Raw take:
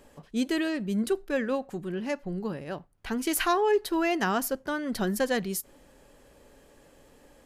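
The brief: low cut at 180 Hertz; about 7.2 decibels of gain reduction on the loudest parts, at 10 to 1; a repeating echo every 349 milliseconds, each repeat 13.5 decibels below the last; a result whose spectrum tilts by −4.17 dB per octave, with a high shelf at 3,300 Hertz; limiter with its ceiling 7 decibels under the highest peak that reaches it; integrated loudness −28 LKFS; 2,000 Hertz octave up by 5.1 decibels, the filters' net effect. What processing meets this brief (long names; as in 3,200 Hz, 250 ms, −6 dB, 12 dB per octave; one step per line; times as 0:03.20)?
high-pass filter 180 Hz
parametric band 2,000 Hz +5.5 dB
high-shelf EQ 3,300 Hz +3.5 dB
downward compressor 10 to 1, threshold −27 dBFS
brickwall limiter −24.5 dBFS
repeating echo 349 ms, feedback 21%, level −13.5 dB
level +6 dB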